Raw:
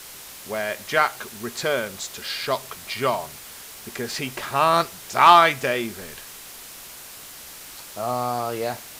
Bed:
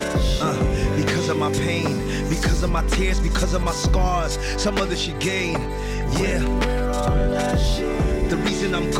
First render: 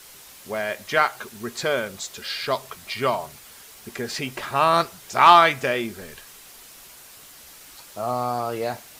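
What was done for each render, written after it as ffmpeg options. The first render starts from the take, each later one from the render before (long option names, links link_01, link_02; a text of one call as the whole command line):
ffmpeg -i in.wav -af "afftdn=noise_reduction=6:noise_floor=-41" out.wav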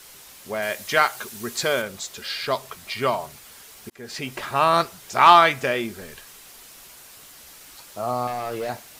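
ffmpeg -i in.wav -filter_complex "[0:a]asettb=1/sr,asplit=3[link_01][link_02][link_03];[link_01]atrim=end=0.624[link_04];[link_02]atrim=start=0.62:end=1.82,asetpts=PTS-STARTPTS,afade=type=in:duration=0.004:curve=qsin,afade=type=out:start_time=1.196:duration=0.004:curve=qsin,highshelf=frequency=3800:gain=7.5[link_05];[link_03]atrim=start=1.816[link_06];[link_04][link_05]acrossfade=duration=0.004:curve1=hsin:curve2=qsin[link_07];[link_07][link_06]acrossfade=duration=0.004:curve1=qsin:curve2=hsin,asettb=1/sr,asplit=3[link_08][link_09][link_10];[link_08]atrim=end=8.274[link_11];[link_09]atrim=start=8.27:end=8.69,asetpts=PTS-STARTPTS,afade=type=in:duration=0.004:curve=qsin,afade=type=out:start_time=0.416:duration=0.004:curve=qsin,asoftclip=type=hard:threshold=-24dB[link_12];[link_10]atrim=start=8.686[link_13];[link_11][link_12]acrossfade=duration=0.004:curve1=hsin:curve2=qsin[link_14];[link_14][link_13]acrossfade=duration=0.004:curve1=qsin:curve2=hsin,asplit=2[link_15][link_16];[link_15]atrim=end=3.9,asetpts=PTS-STARTPTS,afade=type=out:start_time=3.896:duration=0.004:curve=hsin[link_17];[link_16]atrim=start=3.9,asetpts=PTS-STARTPTS,afade=type=in:duration=0.56:curve=qsin[link_18];[link_17][link_18]concat=n=2:v=0:a=1" out.wav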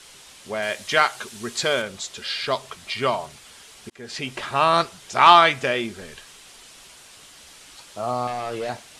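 ffmpeg -i in.wav -af "lowpass=frequency=10000:width=0.5412,lowpass=frequency=10000:width=1.3066,equalizer=frequency=3200:width=2.1:gain=4" out.wav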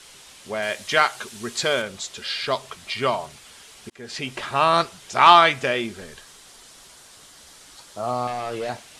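ffmpeg -i in.wav -filter_complex "[0:a]asettb=1/sr,asplit=3[link_01][link_02][link_03];[link_01]atrim=end=6.044[link_04];[link_02]atrim=start=6.04:end=8.05,asetpts=PTS-STARTPTS,afade=type=in:duration=0.004:curve=qsin,afade=type=out:start_time=2.006:duration=0.004:curve=qsin,equalizer=frequency=2600:width=2.5:gain=-6[link_05];[link_03]atrim=start=8.046[link_06];[link_04][link_05]acrossfade=duration=0.004:curve1=hsin:curve2=qsin[link_07];[link_07][link_06]acrossfade=duration=0.004:curve1=qsin:curve2=hsin" out.wav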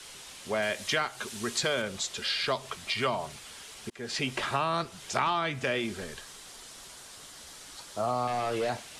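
ffmpeg -i in.wav -filter_complex "[0:a]acrossover=split=520|1000[link_01][link_02][link_03];[link_01]alimiter=level_in=3dB:limit=-24dB:level=0:latency=1,volume=-3dB[link_04];[link_04][link_02][link_03]amix=inputs=3:normalize=0,acrossover=split=330[link_05][link_06];[link_06]acompressor=threshold=-26dB:ratio=10[link_07];[link_05][link_07]amix=inputs=2:normalize=0" out.wav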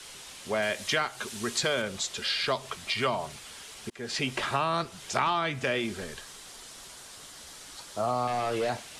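ffmpeg -i in.wav -af "volume=1dB" out.wav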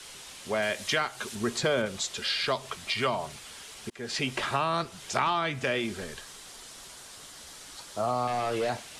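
ffmpeg -i in.wav -filter_complex "[0:a]asettb=1/sr,asplit=3[link_01][link_02][link_03];[link_01]atrim=end=1.354[link_04];[link_02]atrim=start=1.35:end=1.86,asetpts=PTS-STARTPTS,afade=type=in:duration=0.004:curve=qsin,afade=type=out:start_time=0.506:duration=0.004:curve=qsin,tiltshelf=frequency=1400:gain=4.5[link_05];[link_03]atrim=start=1.856[link_06];[link_04][link_05]acrossfade=duration=0.004:curve1=hsin:curve2=qsin[link_07];[link_07][link_06]acrossfade=duration=0.004:curve1=qsin:curve2=hsin" out.wav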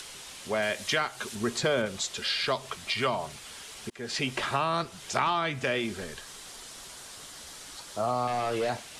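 ffmpeg -i in.wav -af "acompressor=mode=upward:threshold=-40dB:ratio=2.5" out.wav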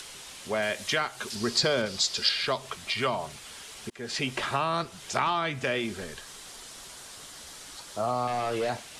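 ffmpeg -i in.wav -filter_complex "[0:a]asettb=1/sr,asplit=3[link_01][link_02][link_03];[link_01]atrim=end=1.304[link_04];[link_02]atrim=start=1.3:end=2.29,asetpts=PTS-STARTPTS,afade=type=in:duration=0.004:curve=qsin,afade=type=out:start_time=0.986:duration=0.004:curve=qsin,equalizer=frequency=4800:width=2.8:gain=14[link_05];[link_03]atrim=start=2.286[link_06];[link_04][link_05]acrossfade=duration=0.004:curve1=hsin:curve2=qsin[link_07];[link_07][link_06]acrossfade=duration=0.004:curve1=qsin:curve2=hsin" out.wav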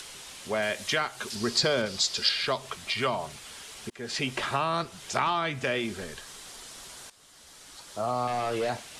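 ffmpeg -i in.wav -filter_complex "[0:a]asplit=2[link_01][link_02];[link_01]atrim=end=7.1,asetpts=PTS-STARTPTS,afade=type=out:start_time=7.096:duration=0.004:curve=hsin:silence=0.16788[link_03];[link_02]atrim=start=7.1,asetpts=PTS-STARTPTS,afade=type=in:duration=1.11:silence=0.16788[link_04];[link_03][link_04]concat=n=2:v=0:a=1" out.wav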